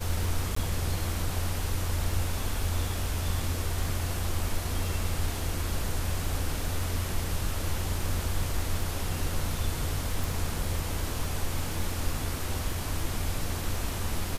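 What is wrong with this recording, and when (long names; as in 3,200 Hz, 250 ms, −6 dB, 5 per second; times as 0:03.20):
surface crackle 15 per second −34 dBFS
0:00.55–0:00.56: drop-out 14 ms
0:10.24: click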